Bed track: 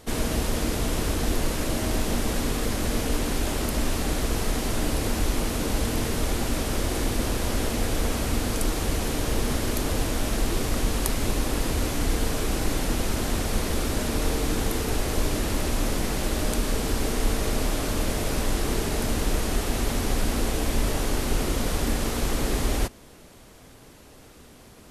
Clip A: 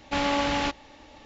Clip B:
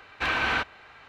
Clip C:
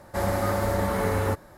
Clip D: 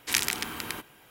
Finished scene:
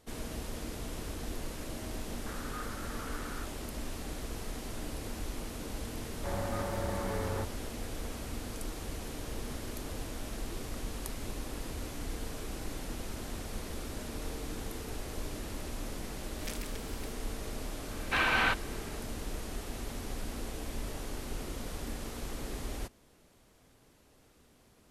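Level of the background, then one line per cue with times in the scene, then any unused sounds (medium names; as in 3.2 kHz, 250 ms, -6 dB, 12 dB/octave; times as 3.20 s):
bed track -14 dB
2.11 s: add C -6.5 dB + ladder band-pass 1.5 kHz, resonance 65%
6.10 s: add C -10.5 dB + treble shelf 5.3 kHz -8.5 dB
16.33 s: add D -15.5 dB + endless flanger 4.3 ms +2.8 Hz
17.91 s: add B -2 dB
not used: A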